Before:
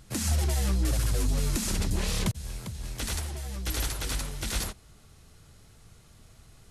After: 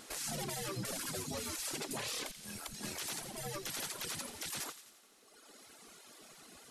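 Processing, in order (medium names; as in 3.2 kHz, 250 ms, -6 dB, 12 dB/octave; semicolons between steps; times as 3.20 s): spectral gate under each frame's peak -15 dB weak; reverb removal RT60 1.6 s; compression 5:1, threshold -42 dBFS, peak gain reduction 10.5 dB; peak limiter -37.5 dBFS, peak gain reduction 10 dB; feedback echo behind a high-pass 86 ms, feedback 57%, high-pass 2 kHz, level -10.5 dB; trim +7.5 dB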